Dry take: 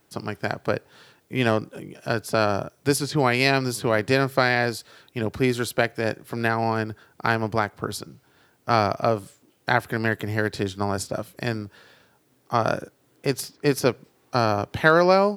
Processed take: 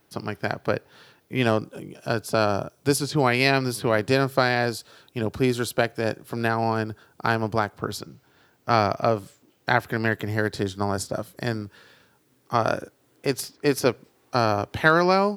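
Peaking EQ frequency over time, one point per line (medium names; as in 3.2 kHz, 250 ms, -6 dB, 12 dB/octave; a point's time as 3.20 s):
peaking EQ -6 dB 0.41 oct
7.7 kHz
from 1.43 s 1.9 kHz
from 3.27 s 7 kHz
from 3.97 s 2 kHz
from 7.78 s 9.6 kHz
from 10.30 s 2.5 kHz
from 11.62 s 690 Hz
from 12.55 s 160 Hz
from 14.85 s 540 Hz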